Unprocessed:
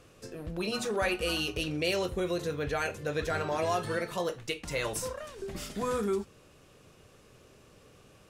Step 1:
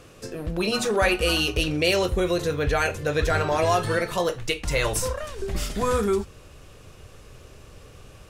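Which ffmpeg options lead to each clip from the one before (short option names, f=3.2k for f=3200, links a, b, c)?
-af "asubboost=boost=4:cutoff=91,volume=8.5dB"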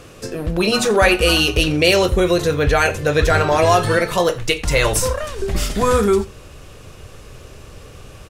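-af "aecho=1:1:88:0.0794,volume=7.5dB"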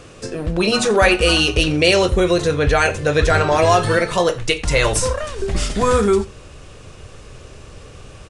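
-af "aresample=22050,aresample=44100"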